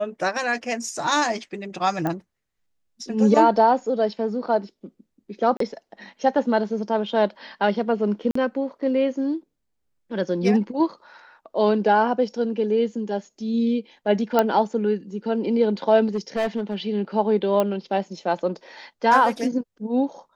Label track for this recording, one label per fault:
2.070000	2.070000	click −14 dBFS
5.570000	5.600000	drop-out 33 ms
8.310000	8.350000	drop-out 44 ms
14.390000	14.390000	click −6 dBFS
16.060000	16.750000	clipping −19 dBFS
17.600000	17.600000	click −10 dBFS

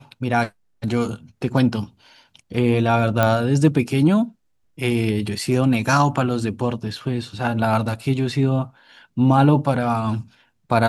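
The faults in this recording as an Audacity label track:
3.230000	3.230000	click −5 dBFS

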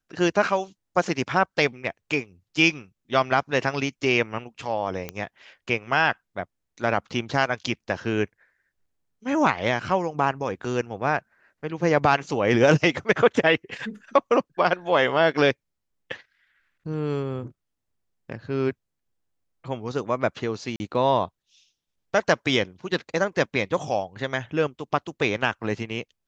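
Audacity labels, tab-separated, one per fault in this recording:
5.090000	5.090000	click −15 dBFS
20.760000	20.800000	drop-out 40 ms

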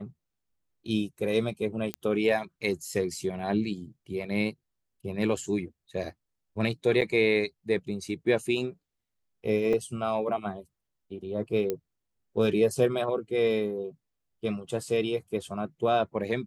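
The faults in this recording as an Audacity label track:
1.940000	1.940000	click −16 dBFS
7.010000	7.020000	drop-out 7.3 ms
9.730000	9.730000	drop-out 4.6 ms
11.700000	11.700000	click −16 dBFS

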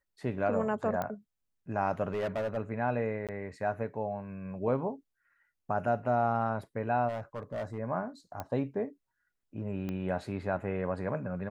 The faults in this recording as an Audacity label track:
1.020000	1.020000	click −20 dBFS
2.110000	2.580000	clipping −28.5 dBFS
3.270000	3.290000	drop-out 17 ms
7.080000	7.790000	clipping −31.5 dBFS
8.400000	8.400000	click −22 dBFS
9.890000	9.890000	click −24 dBFS

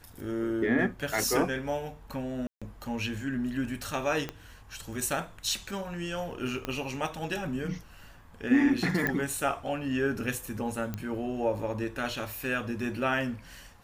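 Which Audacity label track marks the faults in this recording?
2.470000	2.620000	drop-out 146 ms
4.290000	4.290000	click −19 dBFS
6.650000	6.650000	click −18 dBFS
9.070000	9.070000	click −14 dBFS
10.940000	10.940000	click −20 dBFS

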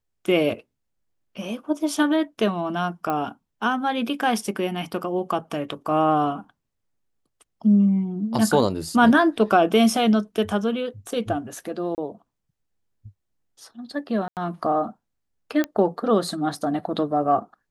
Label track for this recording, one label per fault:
3.100000	3.100000	click −14 dBFS
11.950000	11.980000	drop-out 29 ms
14.280000	14.370000	drop-out 88 ms
15.640000	15.640000	click −11 dBFS

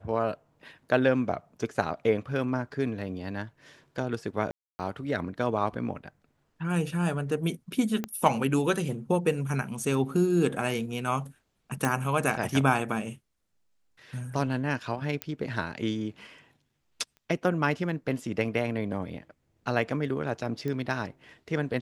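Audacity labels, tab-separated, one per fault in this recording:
4.510000	4.790000	drop-out 280 ms
8.040000	8.040000	click −17 dBFS
11.850000	11.850000	click
15.220000	15.220000	click −14 dBFS
17.170000	17.170000	click −37 dBFS
20.680000	20.680000	click −22 dBFS

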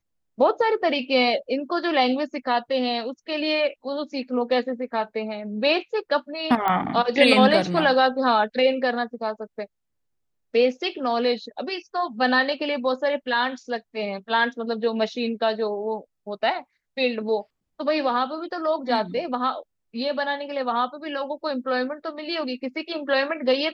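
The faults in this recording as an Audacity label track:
6.680000	6.680000	click −12 dBFS

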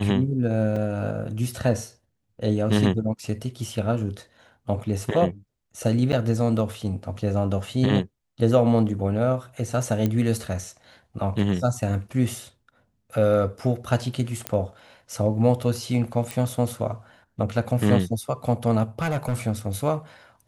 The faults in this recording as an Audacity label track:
0.760000	0.760000	drop-out 3.7 ms
6.120000	6.130000	drop-out 9.1 ms
10.060000	10.060000	click −12 dBFS
14.470000	14.470000	click −9 dBFS
16.310000	16.310000	click
18.990000	19.350000	clipping −21 dBFS

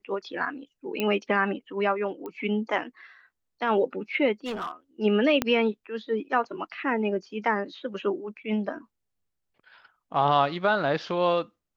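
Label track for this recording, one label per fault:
1.000000	1.000000	click −14 dBFS
2.260000	2.260000	click −25 dBFS
4.450000	4.710000	clipping −28 dBFS
5.420000	5.420000	click −9 dBFS

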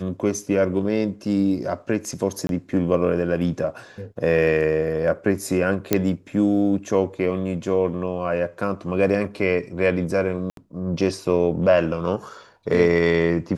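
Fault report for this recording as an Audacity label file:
2.470000	2.490000	drop-out 22 ms
5.930000	5.930000	click −3 dBFS
10.500000	10.570000	drop-out 72 ms

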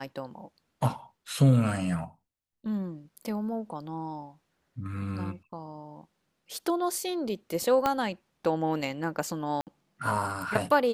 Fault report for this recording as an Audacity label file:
7.860000	7.860000	click −12 dBFS
9.610000	9.670000	drop-out 58 ms

